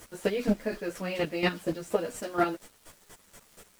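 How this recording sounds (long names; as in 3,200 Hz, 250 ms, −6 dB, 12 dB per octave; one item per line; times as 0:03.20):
chopped level 4.2 Hz, depth 65%, duty 20%
a quantiser's noise floor 10 bits, dither none
a shimmering, thickened sound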